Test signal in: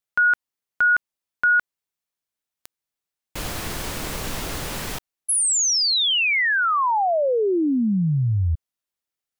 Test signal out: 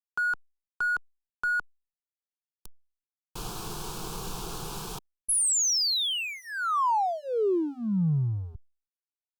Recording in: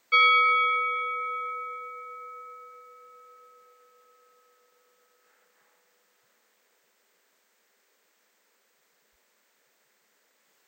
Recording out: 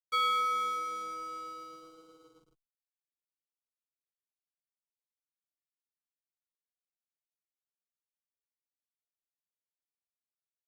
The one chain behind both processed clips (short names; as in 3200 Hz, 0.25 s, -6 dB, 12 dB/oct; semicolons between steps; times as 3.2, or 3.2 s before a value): backlash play -33.5 dBFS; fixed phaser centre 390 Hz, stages 8; gain -3.5 dB; Opus 256 kbps 48000 Hz